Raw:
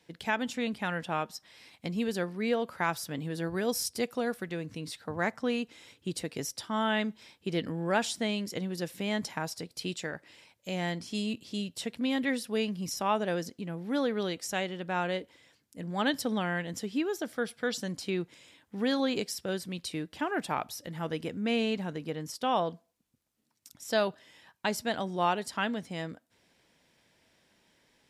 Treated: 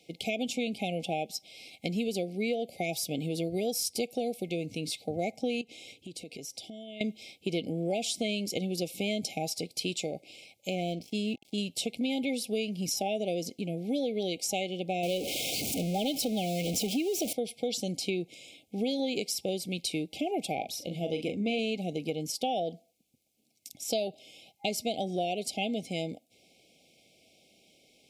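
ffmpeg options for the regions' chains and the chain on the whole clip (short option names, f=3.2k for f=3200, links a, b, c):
-filter_complex "[0:a]asettb=1/sr,asplit=3[a][b][c];[a]atrim=end=5.614[d];[b]atrim=start=5.61:end=7.01,asetpts=PTS-STARTPTS,afade=t=in:d=0.004:c=qsin,afade=t=out:st=1.396:d=0.004:c=qsin,highshelf=f=11k:g=-5.5,acompressor=threshold=-43dB:ratio=12:attack=3.2:release=140:knee=1:detection=peak[e];[c]atrim=start=7.006[f];[d][e]acrossfade=d=0.004:c1=hsin:c2=qsin[g];[g][f]acrossfade=d=0.004:c1=qsin:c2=hsin,asettb=1/sr,asplit=3[h][i][j];[h]atrim=end=10.704[k];[i]atrim=start=10.7:end=11.58,asetpts=PTS-STARTPTS,afade=t=in:d=0.004:c=qsin,afade=t=out:st=0.876:d=0.004:c=qsin,highshelf=f=3.4k:g=-10,aeval=exprs='sgn(val(0))*max(abs(val(0))-0.00266,0)':c=same[l];[j]atrim=start=11.576[m];[k][l]acrossfade=d=0.004:c1=hsin:c2=qsin[n];[n][m]acrossfade=d=0.004:c1=qsin:c2=hsin,asettb=1/sr,asplit=3[o][p][q];[o]atrim=end=15.034[r];[p]atrim=start=15.03:end=17.33,asetpts=PTS-STARTPTS,afade=t=in:d=0.004:c=qsin,afade=t=out:st=2.296:d=0.004:c=qsin,aeval=exprs='val(0)+0.5*0.0266*sgn(val(0))':c=same,asuperstop=centerf=1700:order=4:qfactor=2.3[s];[q]atrim=start=17.326[t];[r][s]acrossfade=d=0.004:c1=hsin:c2=qsin[u];[u][t]acrossfade=d=0.004:c1=qsin:c2=hsin,asettb=1/sr,asplit=3[v][w][x];[v]atrim=end=20.564[y];[w]atrim=start=20.56:end=21.59,asetpts=PTS-STARTPTS,afade=t=in:d=0.004:c=qsin,afade=t=out:st=1.026:d=0.004:c=qsin,highshelf=f=8.4k:g=-9.5,asplit=2[z][aa];[aa]adelay=40,volume=-8dB[ab];[z][ab]amix=inputs=2:normalize=0,atrim=end_sample=45423[ac];[x]atrim=start=21.586[ad];[y][ac]acrossfade=d=0.004:c1=hsin:c2=qsin[ae];[ae][ad]acrossfade=d=0.004:c1=qsin:c2=hsin,afftfilt=real='re*(1-between(b*sr/4096,810,2100))':imag='im*(1-between(b*sr/4096,810,2100))':win_size=4096:overlap=0.75,lowshelf=f=130:g=-11,acompressor=threshold=-34dB:ratio=6,volume=6.5dB"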